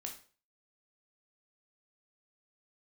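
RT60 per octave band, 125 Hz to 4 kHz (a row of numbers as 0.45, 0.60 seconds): 0.45, 0.40, 0.45, 0.40, 0.35, 0.35 seconds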